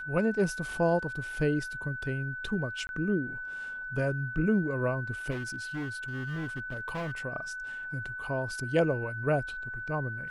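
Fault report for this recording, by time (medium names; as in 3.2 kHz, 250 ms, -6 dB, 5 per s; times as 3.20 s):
whine 1.5 kHz -36 dBFS
2.87–2.89 s: dropout 21 ms
5.30–7.20 s: clipped -31 dBFS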